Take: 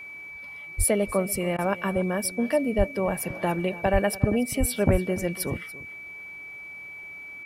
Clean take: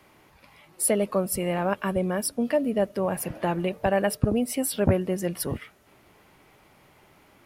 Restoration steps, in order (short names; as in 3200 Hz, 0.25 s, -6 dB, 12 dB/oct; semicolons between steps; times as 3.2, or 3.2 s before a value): notch 2300 Hz, Q 30; de-plosive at 0.77/2.77/3.92/4.59/4.91; interpolate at 1.57, 14 ms; inverse comb 0.287 s -17.5 dB